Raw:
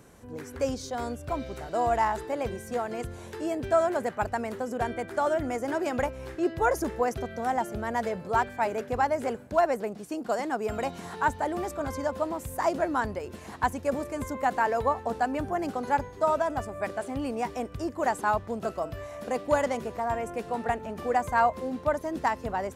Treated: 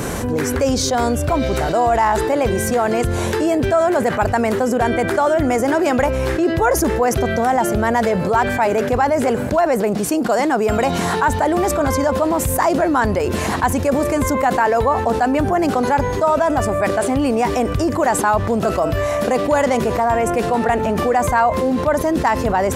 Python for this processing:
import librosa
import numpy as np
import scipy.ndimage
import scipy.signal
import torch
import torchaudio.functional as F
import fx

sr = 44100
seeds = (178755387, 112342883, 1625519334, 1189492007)

y = fx.env_flatten(x, sr, amount_pct=70)
y = F.gain(torch.from_numpy(y), 5.5).numpy()